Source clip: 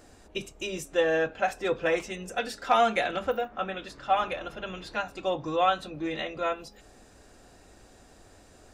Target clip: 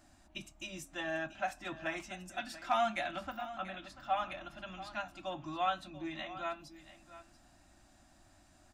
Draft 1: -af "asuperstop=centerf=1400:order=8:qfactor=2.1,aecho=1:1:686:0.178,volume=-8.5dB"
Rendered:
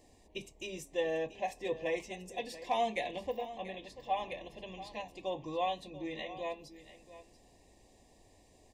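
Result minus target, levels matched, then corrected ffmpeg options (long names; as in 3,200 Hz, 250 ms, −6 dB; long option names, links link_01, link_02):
500 Hz band +4.5 dB
-af "asuperstop=centerf=450:order=8:qfactor=2.1,aecho=1:1:686:0.178,volume=-8.5dB"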